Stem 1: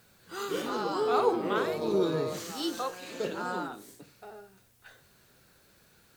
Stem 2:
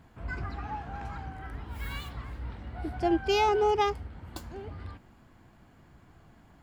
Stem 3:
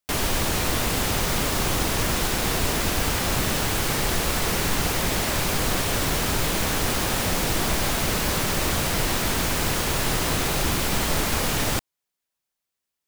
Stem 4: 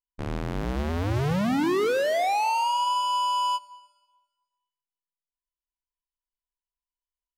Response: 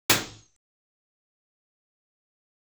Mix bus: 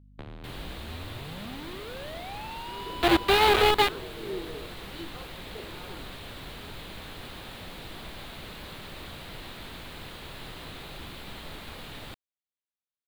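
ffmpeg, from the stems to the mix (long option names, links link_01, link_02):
-filter_complex "[0:a]equalizer=frequency=370:width_type=o:width=0.77:gain=8.5,adelay=2350,volume=-16dB[link_01];[1:a]lowpass=2000,acrusher=bits=3:mix=0:aa=0.000001,volume=2dB[link_02];[2:a]adelay=350,volume=-18dB[link_03];[3:a]acrossover=split=120[link_04][link_05];[link_05]acompressor=threshold=-34dB:ratio=2[link_06];[link_04][link_06]amix=inputs=2:normalize=0,aeval=exprs='val(0)+0.00282*(sin(2*PI*50*n/s)+sin(2*PI*2*50*n/s)/2+sin(2*PI*3*50*n/s)/3+sin(2*PI*4*50*n/s)/4+sin(2*PI*5*50*n/s)/5)':channel_layout=same,acompressor=threshold=-37dB:ratio=12,volume=-2dB[link_07];[link_01][link_02][link_03][link_07]amix=inputs=4:normalize=0,highshelf=frequency=4700:width_type=q:width=3:gain=-6.5"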